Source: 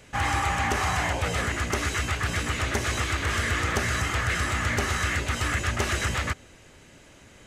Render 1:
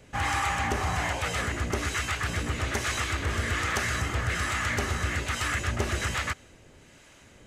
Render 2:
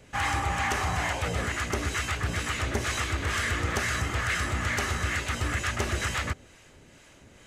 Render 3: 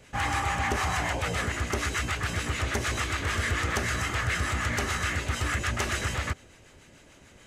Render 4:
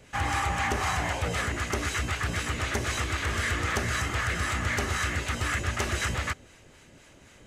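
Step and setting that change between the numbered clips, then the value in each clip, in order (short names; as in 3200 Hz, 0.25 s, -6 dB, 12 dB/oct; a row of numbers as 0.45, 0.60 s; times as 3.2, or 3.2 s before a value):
harmonic tremolo, rate: 1.2, 2.2, 6.8, 3.9 Hz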